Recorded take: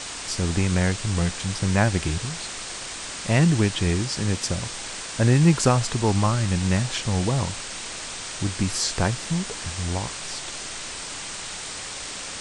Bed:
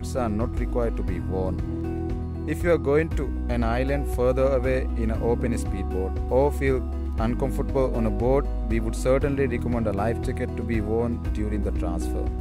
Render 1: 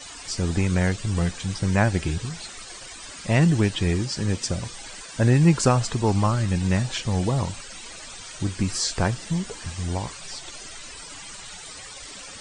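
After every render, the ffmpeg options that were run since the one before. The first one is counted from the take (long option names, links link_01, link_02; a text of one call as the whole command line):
ffmpeg -i in.wav -af "afftdn=noise_reduction=14:noise_floor=-35" out.wav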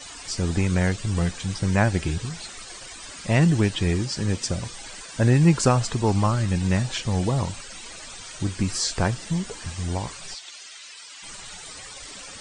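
ffmpeg -i in.wav -filter_complex "[0:a]asplit=3[link_01][link_02][link_03];[link_01]afade=type=out:start_time=10.33:duration=0.02[link_04];[link_02]bandpass=frequency=3500:width_type=q:width=0.66,afade=type=in:start_time=10.33:duration=0.02,afade=type=out:start_time=11.22:duration=0.02[link_05];[link_03]afade=type=in:start_time=11.22:duration=0.02[link_06];[link_04][link_05][link_06]amix=inputs=3:normalize=0" out.wav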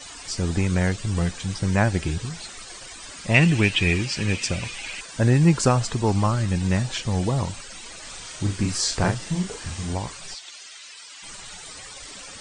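ffmpeg -i in.wav -filter_complex "[0:a]asettb=1/sr,asplit=3[link_01][link_02][link_03];[link_01]atrim=end=3.344[link_04];[link_02]atrim=start=3.34:end=5.01,asetpts=PTS-STARTPTS,afade=type=in:duration=0.004:curve=qsin,afade=type=out:start_time=1.666:duration=0.004:curve=qsin,equalizer=frequency=2500:width=2.2:gain=15[link_05];[link_03]atrim=start=5.006[link_06];[link_04][link_05]acrossfade=duration=0.004:curve1=hsin:curve2=qsin[link_07];[link_07][link_06]acrossfade=duration=0.004:curve1=qsin:curve2=hsin,asettb=1/sr,asplit=3[link_08][link_09][link_10];[link_08]atrim=end=8.014[link_11];[link_09]atrim=start=8.01:end=9.93,asetpts=PTS-STARTPTS,afade=type=in:duration=0.004:curve=qsin,afade=type=out:start_time=1.916:duration=0.004:curve=qsin,asplit=2[link_12][link_13];[link_13]adelay=39,volume=-4dB[link_14];[link_12][link_14]amix=inputs=2:normalize=0,atrim=end_sample=84672[link_15];[link_10]atrim=start=9.926[link_16];[link_11][link_15]acrossfade=duration=0.004:curve1=hsin:curve2=qsin[link_17];[link_17][link_16]acrossfade=duration=0.004:curve1=qsin:curve2=hsin" out.wav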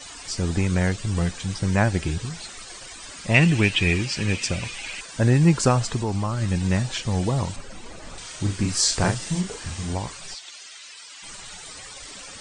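ffmpeg -i in.wav -filter_complex "[0:a]asettb=1/sr,asplit=3[link_01][link_02][link_03];[link_01]atrim=end=5.984[link_04];[link_02]atrim=start=5.98:end=6.42,asetpts=PTS-STARTPTS,afade=type=in:duration=0.004:curve=qsin,afade=type=out:start_time=0.436:duration=0.004:curve=qsin,acompressor=threshold=-22dB:ratio=2.5:attack=3.2:release=140:knee=1:detection=peak[link_05];[link_03]atrim=start=6.416[link_06];[link_04][link_05]acrossfade=duration=0.004:curve1=hsin:curve2=qsin[link_07];[link_07][link_06]acrossfade=duration=0.004:curve1=qsin:curve2=hsin,asettb=1/sr,asplit=3[link_08][link_09][link_10];[link_08]atrim=end=7.564[link_11];[link_09]atrim=start=7.56:end=8.18,asetpts=PTS-STARTPTS,afade=type=in:duration=0.004:curve=qsin,afade=type=out:start_time=0.616:duration=0.004:curve=qsin,tiltshelf=frequency=1200:gain=8[link_12];[link_10]atrim=start=8.176[link_13];[link_11][link_12]acrossfade=duration=0.004:curve1=hsin:curve2=qsin[link_14];[link_14][link_13]acrossfade=duration=0.004:curve1=qsin:curve2=hsin,asettb=1/sr,asplit=3[link_15][link_16][link_17];[link_15]atrim=end=8.774[link_18];[link_16]atrim=start=8.77:end=9.41,asetpts=PTS-STARTPTS,afade=type=in:duration=0.004:curve=qsin,afade=type=out:start_time=0.636:duration=0.004:curve=qsin,highshelf=frequency=5000:gain=6.5[link_19];[link_17]atrim=start=9.406[link_20];[link_18][link_19]acrossfade=duration=0.004:curve1=hsin:curve2=qsin[link_21];[link_21][link_20]acrossfade=duration=0.004:curve1=qsin:curve2=hsin" out.wav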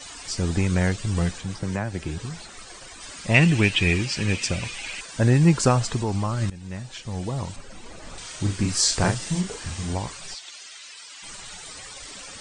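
ffmpeg -i in.wav -filter_complex "[0:a]asettb=1/sr,asplit=3[link_01][link_02][link_03];[link_01]atrim=end=1.384[link_04];[link_02]atrim=start=1.38:end=3.01,asetpts=PTS-STARTPTS,afade=type=in:duration=0.004:curve=qsin,afade=type=out:start_time=1.626:duration=0.004:curve=qsin,acrossover=split=190|1800[link_05][link_06][link_07];[link_05]acompressor=threshold=-31dB:ratio=4[link_08];[link_06]acompressor=threshold=-28dB:ratio=4[link_09];[link_07]acompressor=threshold=-42dB:ratio=4[link_10];[link_08][link_09][link_10]amix=inputs=3:normalize=0[link_11];[link_03]atrim=start=3.006[link_12];[link_04][link_11]acrossfade=duration=0.004:curve1=hsin:curve2=qsin[link_13];[link_13][link_12]acrossfade=duration=0.004:curve1=qsin:curve2=hsin,asplit=2[link_14][link_15];[link_14]atrim=end=6.5,asetpts=PTS-STARTPTS,afade=type=out:start_time=6.496:duration=0.004:curve=hsin:silence=0.11885[link_16];[link_15]atrim=start=6.5,asetpts=PTS-STARTPTS,afade=type=in:duration=1.74:silence=0.11885[link_17];[link_16][link_17]concat=n=2:v=0:a=1" out.wav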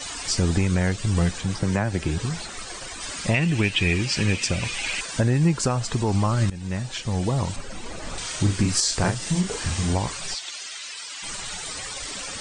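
ffmpeg -i in.wav -filter_complex "[0:a]asplit=2[link_01][link_02];[link_02]acompressor=threshold=-27dB:ratio=6,volume=1dB[link_03];[link_01][link_03]amix=inputs=2:normalize=0,alimiter=limit=-10dB:level=0:latency=1:release=495" out.wav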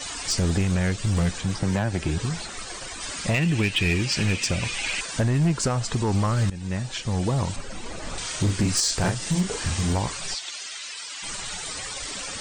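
ffmpeg -i in.wav -af "volume=16.5dB,asoftclip=hard,volume=-16.5dB" out.wav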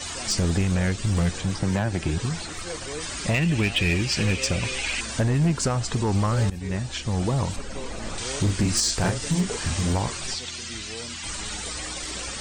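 ffmpeg -i in.wav -i bed.wav -filter_complex "[1:a]volume=-15.5dB[link_01];[0:a][link_01]amix=inputs=2:normalize=0" out.wav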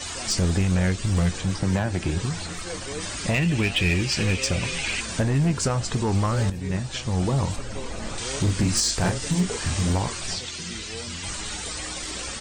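ffmpeg -i in.wav -filter_complex "[0:a]asplit=2[link_01][link_02];[link_02]adelay=22,volume=-13dB[link_03];[link_01][link_03]amix=inputs=2:normalize=0,asplit=2[link_04][link_05];[link_05]adelay=1283,volume=-18dB,highshelf=frequency=4000:gain=-28.9[link_06];[link_04][link_06]amix=inputs=2:normalize=0" out.wav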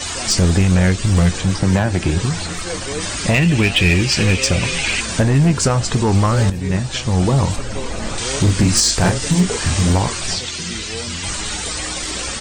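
ffmpeg -i in.wav -af "volume=8dB" out.wav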